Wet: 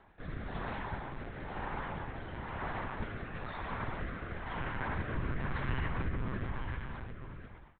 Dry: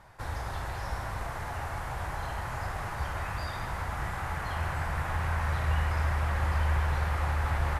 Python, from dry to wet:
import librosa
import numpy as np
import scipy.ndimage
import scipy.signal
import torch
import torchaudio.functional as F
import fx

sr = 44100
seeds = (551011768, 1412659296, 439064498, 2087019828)

y = fx.fade_out_tail(x, sr, length_s=2.12)
y = fx.lpc_monotone(y, sr, seeds[0], pitch_hz=130.0, order=10)
y = fx.rotary(y, sr, hz=1.0)
y = y * librosa.db_to_amplitude(-3.0)